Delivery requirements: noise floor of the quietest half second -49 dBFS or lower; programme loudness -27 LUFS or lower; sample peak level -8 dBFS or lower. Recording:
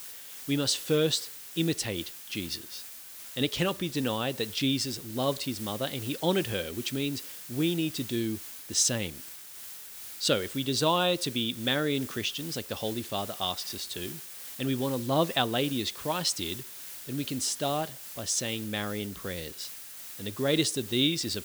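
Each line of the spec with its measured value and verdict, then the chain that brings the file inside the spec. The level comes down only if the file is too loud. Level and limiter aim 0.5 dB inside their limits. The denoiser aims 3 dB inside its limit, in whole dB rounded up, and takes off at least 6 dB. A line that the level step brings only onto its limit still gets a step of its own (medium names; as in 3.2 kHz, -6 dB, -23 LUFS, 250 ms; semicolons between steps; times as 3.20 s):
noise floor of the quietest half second -45 dBFS: fail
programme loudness -30.0 LUFS: pass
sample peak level -10.5 dBFS: pass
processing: noise reduction 7 dB, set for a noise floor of -45 dBFS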